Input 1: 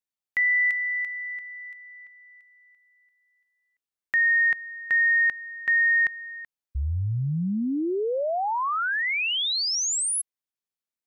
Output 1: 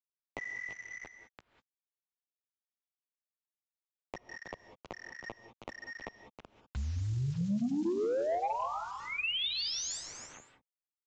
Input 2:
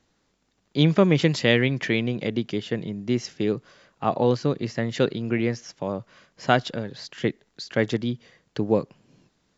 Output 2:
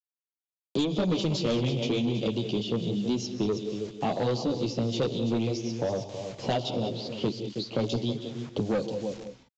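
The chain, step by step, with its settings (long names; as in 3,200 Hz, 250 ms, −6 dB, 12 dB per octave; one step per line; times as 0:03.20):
Butterworth band-reject 1,700 Hz, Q 0.59
parametric band 2,600 Hz +7.5 dB 1.5 octaves
multi-voice chorus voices 2, 0.89 Hz, delay 13 ms, depth 4.4 ms
in parallel at −2.5 dB: downward compressor 8 to 1, threshold −32 dBFS
on the sum: low-shelf EQ 84 Hz −6 dB
on a send: single-tap delay 319 ms −14 dB
on the sum: low-pass that shuts in the quiet parts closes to 1,400 Hz, open at −20.5 dBFS
bit reduction 9 bits
reverb whose tail is shaped and stops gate 220 ms rising, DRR 11.5 dB
soft clipping −20.5 dBFS
downsampling to 16,000 Hz
multiband upward and downward compressor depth 70%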